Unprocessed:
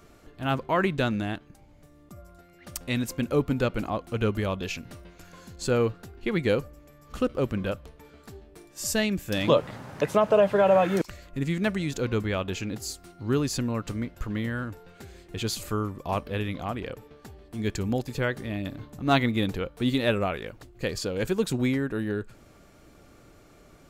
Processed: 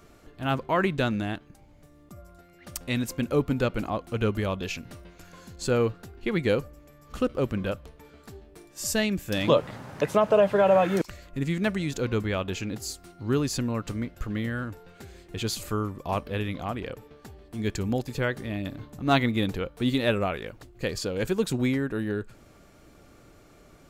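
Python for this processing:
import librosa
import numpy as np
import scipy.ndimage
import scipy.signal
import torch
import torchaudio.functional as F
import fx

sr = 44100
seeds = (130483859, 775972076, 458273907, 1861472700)

y = fx.notch(x, sr, hz=960.0, q=7.9, at=(14.08, 14.62))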